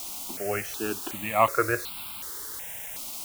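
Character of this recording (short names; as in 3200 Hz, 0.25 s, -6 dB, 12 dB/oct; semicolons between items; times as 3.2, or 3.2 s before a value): a quantiser's noise floor 6-bit, dither triangular; notches that jump at a steady rate 2.7 Hz 460–1800 Hz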